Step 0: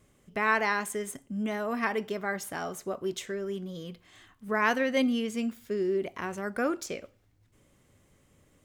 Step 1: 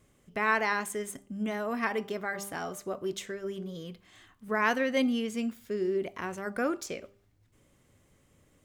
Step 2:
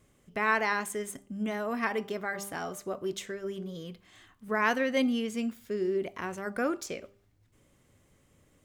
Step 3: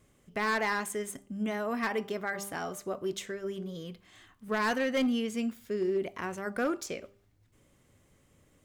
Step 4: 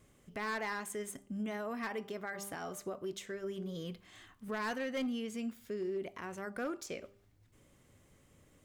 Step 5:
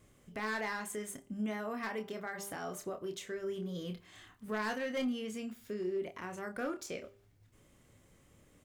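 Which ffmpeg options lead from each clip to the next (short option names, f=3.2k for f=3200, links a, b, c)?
-af "bandreject=f=198.9:t=h:w=4,bandreject=f=397.8:t=h:w=4,bandreject=f=596.7:t=h:w=4,bandreject=f=795.6:t=h:w=4,bandreject=f=994.5:t=h:w=4,bandreject=f=1.1934k:t=h:w=4,volume=-1dB"
-af anull
-af "volume=23.5dB,asoftclip=hard,volume=-23.5dB"
-af "alimiter=level_in=7.5dB:limit=-24dB:level=0:latency=1:release=420,volume=-7.5dB"
-filter_complex "[0:a]asplit=2[a][b];[b]adelay=28,volume=-7dB[c];[a][c]amix=inputs=2:normalize=0"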